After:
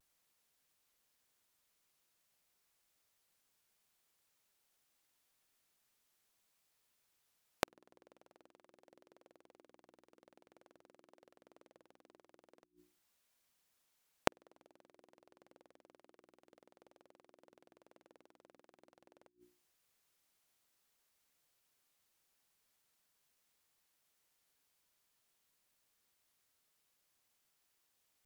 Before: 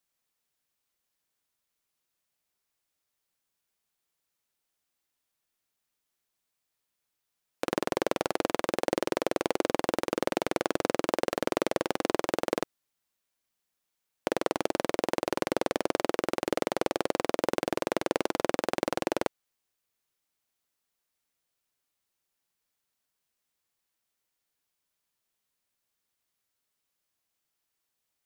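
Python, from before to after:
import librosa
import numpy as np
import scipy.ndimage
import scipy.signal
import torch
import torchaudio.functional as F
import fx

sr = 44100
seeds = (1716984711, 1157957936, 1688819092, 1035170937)

y = fx.vibrato(x, sr, rate_hz=0.48, depth_cents=27.0)
y = fx.hum_notches(y, sr, base_hz=60, count=6)
y = fx.gate_flip(y, sr, shuts_db=-21.0, range_db=-41)
y = F.gain(torch.from_numpy(y), 3.5).numpy()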